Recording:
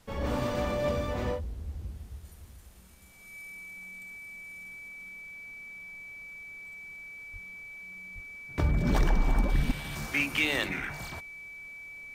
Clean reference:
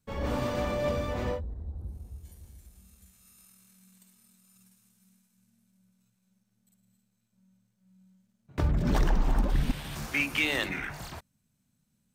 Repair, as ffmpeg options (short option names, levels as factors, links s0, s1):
-filter_complex "[0:a]bandreject=f=2300:w=30,asplit=3[s0][s1][s2];[s0]afade=t=out:st=0.47:d=0.02[s3];[s1]highpass=f=140:w=0.5412,highpass=f=140:w=1.3066,afade=t=in:st=0.47:d=0.02,afade=t=out:st=0.59:d=0.02[s4];[s2]afade=t=in:st=0.59:d=0.02[s5];[s3][s4][s5]amix=inputs=3:normalize=0,asplit=3[s6][s7][s8];[s6]afade=t=out:st=7.32:d=0.02[s9];[s7]highpass=f=140:w=0.5412,highpass=f=140:w=1.3066,afade=t=in:st=7.32:d=0.02,afade=t=out:st=7.44:d=0.02[s10];[s8]afade=t=in:st=7.44:d=0.02[s11];[s9][s10][s11]amix=inputs=3:normalize=0,asplit=3[s12][s13][s14];[s12]afade=t=out:st=8.14:d=0.02[s15];[s13]highpass=f=140:w=0.5412,highpass=f=140:w=1.3066,afade=t=in:st=8.14:d=0.02,afade=t=out:st=8.26:d=0.02[s16];[s14]afade=t=in:st=8.26:d=0.02[s17];[s15][s16][s17]amix=inputs=3:normalize=0,agate=range=0.0891:threshold=0.0112"